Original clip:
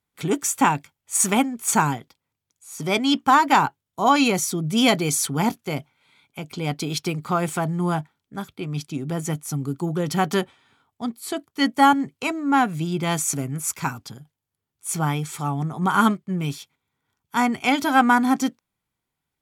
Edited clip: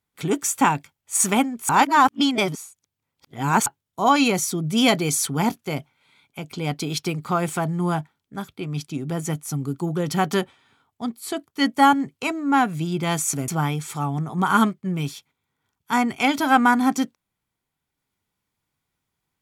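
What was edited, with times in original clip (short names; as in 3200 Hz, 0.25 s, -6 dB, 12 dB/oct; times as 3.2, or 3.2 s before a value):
1.69–3.66 reverse
13.48–14.92 cut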